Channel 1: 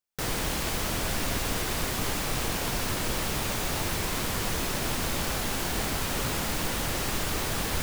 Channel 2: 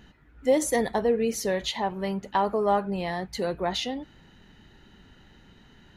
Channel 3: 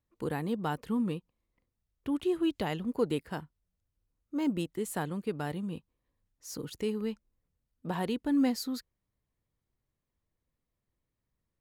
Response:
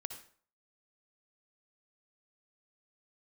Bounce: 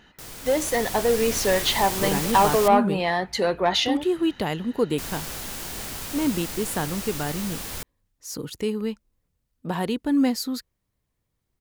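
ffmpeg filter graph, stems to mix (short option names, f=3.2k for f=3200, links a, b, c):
-filter_complex "[0:a]volume=-9.5dB,asplit=3[a][b][c];[a]atrim=end=2.68,asetpts=PTS-STARTPTS,afade=t=out:st=2.676:d=0.004:c=hsin[d];[b]atrim=start=2.68:end=4.98,asetpts=PTS-STARTPTS,volume=0[e];[c]atrim=start=4.98,asetpts=PTS-STARTPTS,afade=t=in:d=0.004:c=hsin[f];[d][e][f]concat=n=3:v=0:a=1,asplit=2[g][h];[h]volume=-16dB[i];[1:a]asplit=2[j][k];[k]highpass=f=720:p=1,volume=11dB,asoftclip=type=tanh:threshold=-11.5dB[l];[j][l]amix=inputs=2:normalize=0,lowpass=f=2.2k:p=1,volume=-6dB,volume=-2.5dB,asplit=3[m][n][o];[n]volume=-22dB[p];[2:a]highshelf=f=4.8k:g=-6,adelay=1800,volume=0dB[q];[o]apad=whole_len=345257[r];[g][r]sidechaingate=range=-6dB:threshold=-45dB:ratio=16:detection=peak[s];[3:a]atrim=start_sample=2205[t];[i][p]amix=inputs=2:normalize=0[u];[u][t]afir=irnorm=-1:irlink=0[v];[s][m][q][v]amix=inputs=4:normalize=0,highshelf=f=4.1k:g=8,dynaudnorm=f=130:g=17:m=6dB"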